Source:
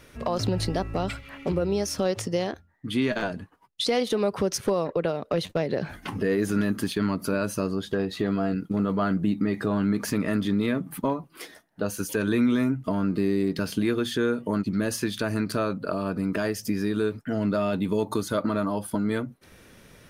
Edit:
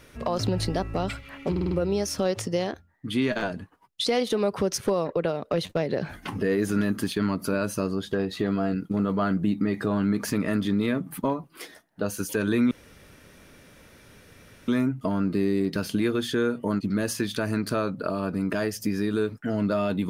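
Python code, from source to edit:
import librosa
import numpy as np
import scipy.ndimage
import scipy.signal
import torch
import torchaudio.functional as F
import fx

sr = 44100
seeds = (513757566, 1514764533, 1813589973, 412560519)

y = fx.edit(x, sr, fx.stutter(start_s=1.51, slice_s=0.05, count=5),
    fx.insert_room_tone(at_s=12.51, length_s=1.97), tone=tone)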